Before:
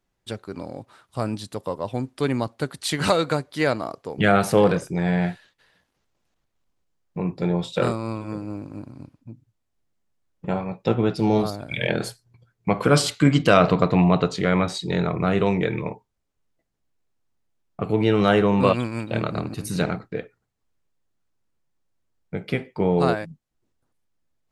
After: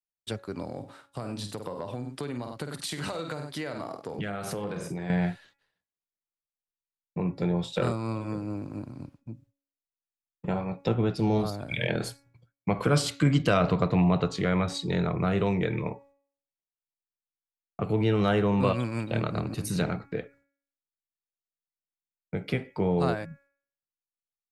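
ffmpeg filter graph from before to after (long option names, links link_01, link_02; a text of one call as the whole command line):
ffmpeg -i in.wav -filter_complex "[0:a]asettb=1/sr,asplit=3[link_01][link_02][link_03];[link_01]atrim=end=0.784[link_04];[link_02]atrim=start=0.78:end=5.1,asetpts=PTS-STARTPTS,afade=type=in:duration=0.004:curve=qsin,afade=type=out:start_time=4.316:duration=0.004:curve=qsin,aecho=1:1:49|97:0.355|0.168,atrim=end_sample=190512,acompressor=threshold=-29dB:ratio=5:attack=3.2:release=140:knee=1:detection=peak,highpass=62[link_05];[link_03]atrim=start=5.096[link_06];[link_04][link_05]acrossfade=duration=0.004:curve1=hsin:curve2=qsin[link_07];[link_07][link_06]acrossfade=duration=0.004:curve1=qsin:curve2=hsin,agate=range=-33dB:threshold=-49dB:ratio=3:detection=peak,bandreject=frequency=279.5:width_type=h:width=4,bandreject=frequency=559:width_type=h:width=4,bandreject=frequency=838.5:width_type=h:width=4,bandreject=frequency=1118:width_type=h:width=4,bandreject=frequency=1397.5:width_type=h:width=4,bandreject=frequency=1677:width_type=h:width=4,bandreject=frequency=1956.5:width_type=h:width=4,bandreject=frequency=2236:width_type=h:width=4,bandreject=frequency=2515.5:width_type=h:width=4,acrossover=split=130[link_08][link_09];[link_09]acompressor=threshold=-34dB:ratio=1.5[link_10];[link_08][link_10]amix=inputs=2:normalize=0" out.wav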